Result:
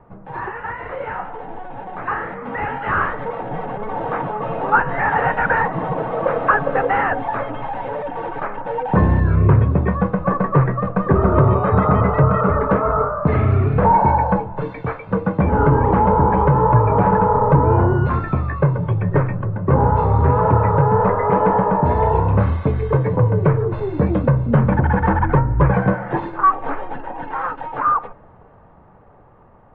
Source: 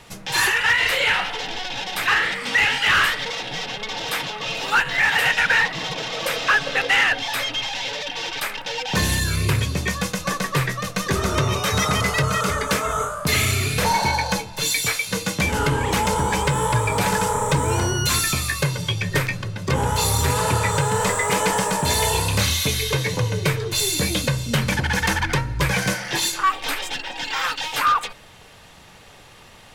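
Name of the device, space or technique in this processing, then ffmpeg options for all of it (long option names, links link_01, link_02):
action camera in a waterproof case: -af "lowpass=frequency=1200:width=0.5412,lowpass=frequency=1200:width=1.3066,dynaudnorm=framelen=850:gausssize=7:maxgain=11.5dB" -ar 48000 -c:a aac -b:a 48k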